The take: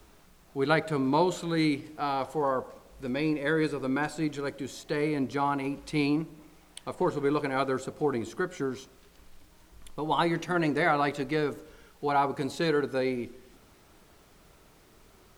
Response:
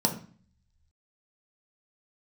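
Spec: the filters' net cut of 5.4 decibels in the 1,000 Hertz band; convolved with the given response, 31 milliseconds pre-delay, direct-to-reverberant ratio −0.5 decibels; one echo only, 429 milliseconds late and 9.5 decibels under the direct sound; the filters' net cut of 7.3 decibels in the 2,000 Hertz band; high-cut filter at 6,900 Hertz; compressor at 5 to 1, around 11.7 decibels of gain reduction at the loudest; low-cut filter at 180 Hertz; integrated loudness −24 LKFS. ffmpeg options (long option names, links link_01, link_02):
-filter_complex "[0:a]highpass=180,lowpass=6900,equalizer=frequency=1000:width_type=o:gain=-5.5,equalizer=frequency=2000:width_type=o:gain=-7.5,acompressor=threshold=-37dB:ratio=5,aecho=1:1:429:0.335,asplit=2[link_01][link_02];[1:a]atrim=start_sample=2205,adelay=31[link_03];[link_02][link_03]afir=irnorm=-1:irlink=0,volume=-9.5dB[link_04];[link_01][link_04]amix=inputs=2:normalize=0,volume=10.5dB"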